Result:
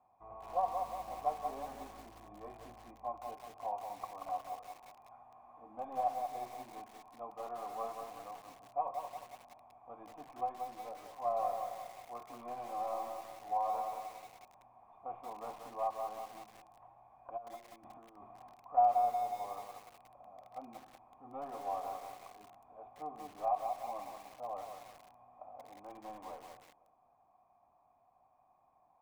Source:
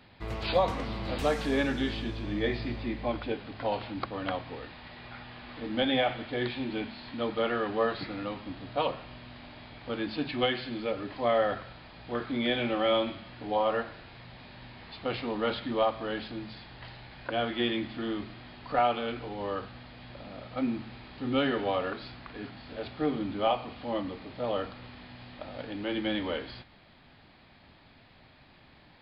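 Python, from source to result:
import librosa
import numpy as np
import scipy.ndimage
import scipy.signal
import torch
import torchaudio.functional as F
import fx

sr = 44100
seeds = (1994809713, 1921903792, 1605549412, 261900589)

p1 = fx.tracing_dist(x, sr, depth_ms=0.3)
p2 = fx.over_compress(p1, sr, threshold_db=-38.0, ratio=-1.0, at=(17.36, 18.52), fade=0.02)
p3 = fx.formant_cascade(p2, sr, vowel='a')
p4 = p3 + fx.echo_feedback(p3, sr, ms=254, feedback_pct=45, wet_db=-20.0, dry=0)
p5 = fx.echo_crushed(p4, sr, ms=181, feedback_pct=55, bits=9, wet_db=-4.5)
y = p5 * librosa.db_to_amplitude(1.0)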